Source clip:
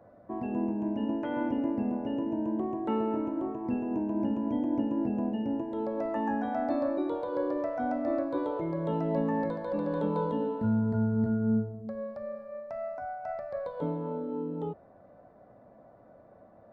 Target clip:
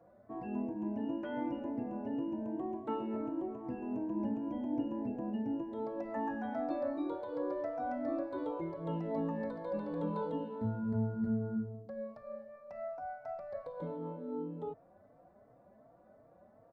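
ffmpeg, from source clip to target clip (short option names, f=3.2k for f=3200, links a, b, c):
-filter_complex "[0:a]asplit=2[a][b];[b]adelay=3.9,afreqshift=2.7[c];[a][c]amix=inputs=2:normalize=1,volume=-3.5dB"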